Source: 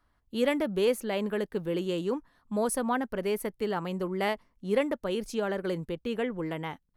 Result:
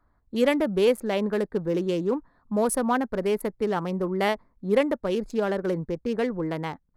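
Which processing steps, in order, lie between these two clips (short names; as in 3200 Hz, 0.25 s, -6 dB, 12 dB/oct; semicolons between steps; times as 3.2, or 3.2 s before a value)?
Wiener smoothing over 15 samples; gain +5 dB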